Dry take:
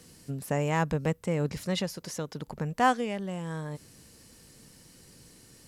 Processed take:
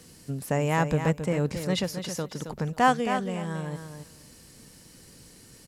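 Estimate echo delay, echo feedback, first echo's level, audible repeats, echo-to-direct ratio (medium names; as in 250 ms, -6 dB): 270 ms, 16%, -8.5 dB, 2, -8.5 dB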